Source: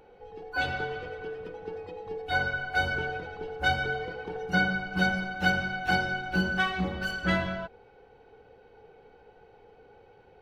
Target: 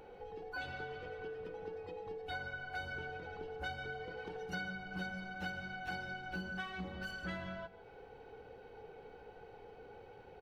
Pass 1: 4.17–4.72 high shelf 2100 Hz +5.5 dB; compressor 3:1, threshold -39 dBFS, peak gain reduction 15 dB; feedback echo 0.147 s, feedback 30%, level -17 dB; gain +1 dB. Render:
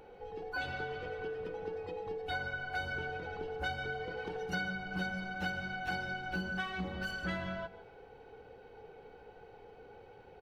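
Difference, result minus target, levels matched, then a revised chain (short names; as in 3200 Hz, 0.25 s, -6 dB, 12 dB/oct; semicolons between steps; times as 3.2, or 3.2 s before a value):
compressor: peak gain reduction -5 dB
4.17–4.72 high shelf 2100 Hz +5.5 dB; compressor 3:1, threshold -46.5 dBFS, peak gain reduction 20 dB; feedback echo 0.147 s, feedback 30%, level -17 dB; gain +1 dB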